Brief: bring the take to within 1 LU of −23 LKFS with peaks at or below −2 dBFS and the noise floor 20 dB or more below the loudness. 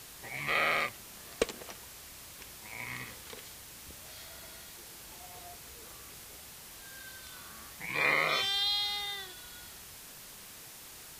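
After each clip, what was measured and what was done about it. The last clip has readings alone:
background noise floor −50 dBFS; target noise floor −53 dBFS; integrated loudness −32.5 LKFS; sample peak −11.0 dBFS; target loudness −23.0 LKFS
→ broadband denoise 6 dB, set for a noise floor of −50 dBFS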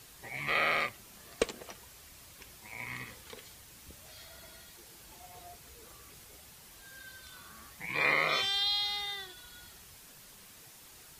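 background noise floor −55 dBFS; integrated loudness −31.0 LKFS; sample peak −11.0 dBFS; target loudness −23.0 LKFS
→ level +8 dB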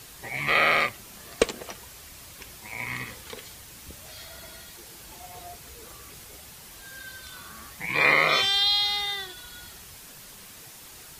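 integrated loudness −23.0 LKFS; sample peak −3.0 dBFS; background noise floor −47 dBFS

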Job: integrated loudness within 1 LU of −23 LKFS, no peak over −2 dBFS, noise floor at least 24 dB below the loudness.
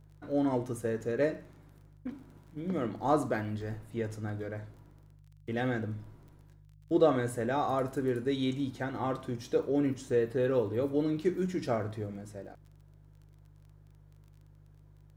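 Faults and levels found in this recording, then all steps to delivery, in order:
crackle rate 27 per second; mains hum 50 Hz; hum harmonics up to 150 Hz; level of the hum −54 dBFS; integrated loudness −32.0 LKFS; sample peak −13.5 dBFS; target loudness −23.0 LKFS
→ click removal
hum removal 50 Hz, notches 3
level +9 dB

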